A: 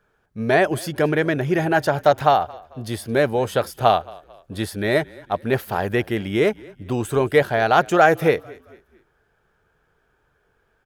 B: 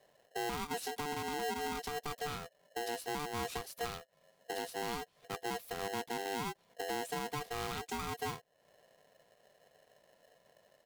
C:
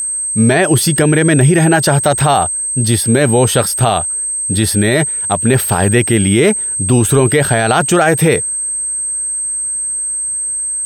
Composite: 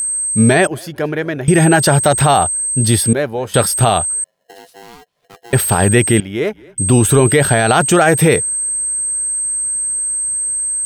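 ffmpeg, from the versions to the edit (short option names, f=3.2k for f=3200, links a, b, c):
-filter_complex "[0:a]asplit=3[a][b][c];[2:a]asplit=5[d][e][f][g][h];[d]atrim=end=0.672[i];[a]atrim=start=0.668:end=1.482[j];[e]atrim=start=1.478:end=3.132[k];[b]atrim=start=3.128:end=3.542[l];[f]atrim=start=3.538:end=4.242[m];[1:a]atrim=start=4.238:end=5.532[n];[g]atrim=start=5.528:end=6.202[o];[c]atrim=start=6.198:end=6.782[p];[h]atrim=start=6.778[q];[i][j]acrossfade=d=0.004:c1=hsin:c2=hsin[r];[r][k]acrossfade=d=0.004:c1=hsin:c2=hsin[s];[s][l]acrossfade=d=0.004:c1=hsin:c2=hsin[t];[t][m]acrossfade=d=0.004:c1=hsin:c2=hsin[u];[u][n]acrossfade=d=0.004:c1=hsin:c2=hsin[v];[v][o]acrossfade=d=0.004:c1=hsin:c2=hsin[w];[w][p]acrossfade=d=0.004:c1=hsin:c2=hsin[x];[x][q]acrossfade=d=0.004:c1=hsin:c2=hsin"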